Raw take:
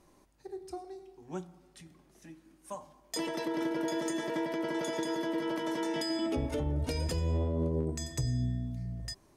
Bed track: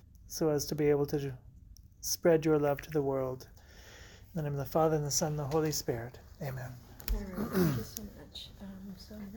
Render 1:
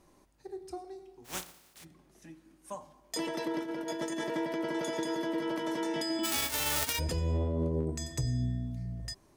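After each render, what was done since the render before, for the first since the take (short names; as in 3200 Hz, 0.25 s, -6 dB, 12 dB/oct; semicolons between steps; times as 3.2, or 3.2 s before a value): 1.24–1.83 spectral contrast lowered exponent 0.25; 3.59–4.24 negative-ratio compressor -35 dBFS, ratio -0.5; 6.23–6.98 spectral whitening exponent 0.1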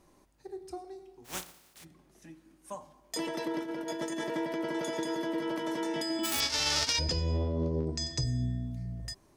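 6.4–8.24 synth low-pass 5200 Hz, resonance Q 3.6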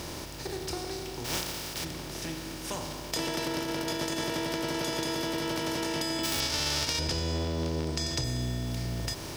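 per-bin compression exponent 0.4; compressor 2:1, threshold -30 dBFS, peak gain reduction 5.5 dB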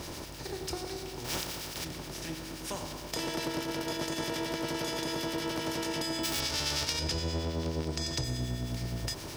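harmonic tremolo 9.5 Hz, depth 50%, crossover 1500 Hz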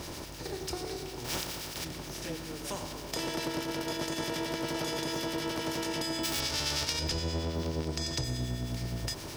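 add bed track -19 dB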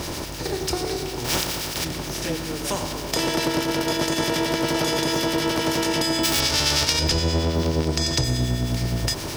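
gain +11 dB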